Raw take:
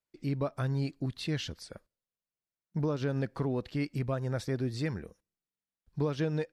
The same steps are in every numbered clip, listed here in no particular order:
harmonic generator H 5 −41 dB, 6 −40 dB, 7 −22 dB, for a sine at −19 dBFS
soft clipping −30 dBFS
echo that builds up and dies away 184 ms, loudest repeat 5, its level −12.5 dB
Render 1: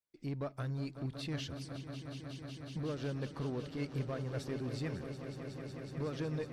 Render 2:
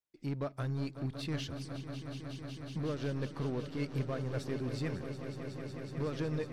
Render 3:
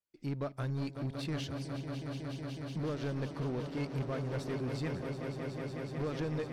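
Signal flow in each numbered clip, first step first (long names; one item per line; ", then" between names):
soft clipping, then harmonic generator, then echo that builds up and dies away
harmonic generator, then soft clipping, then echo that builds up and dies away
harmonic generator, then echo that builds up and dies away, then soft clipping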